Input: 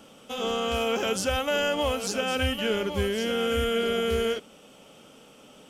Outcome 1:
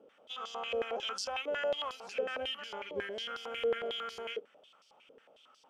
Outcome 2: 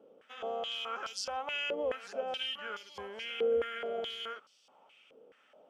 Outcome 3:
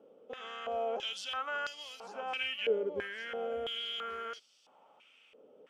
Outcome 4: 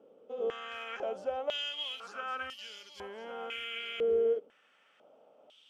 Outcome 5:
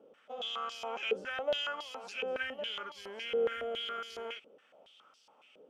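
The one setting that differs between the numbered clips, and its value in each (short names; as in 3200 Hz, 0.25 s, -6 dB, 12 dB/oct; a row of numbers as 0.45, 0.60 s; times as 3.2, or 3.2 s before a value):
stepped band-pass, rate: 11, 4.7, 3, 2, 7.2 Hz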